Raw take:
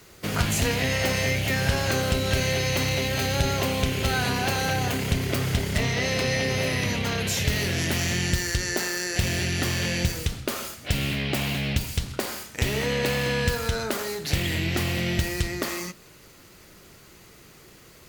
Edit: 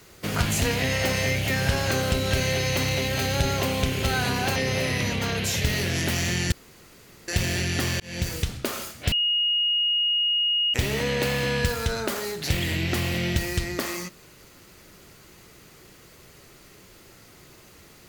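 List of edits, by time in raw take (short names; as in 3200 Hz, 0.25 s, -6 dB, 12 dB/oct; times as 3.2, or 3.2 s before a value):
4.56–6.39 cut
8.35–9.11 room tone
9.83–10.15 fade in
10.95–12.57 bleep 2870 Hz -20 dBFS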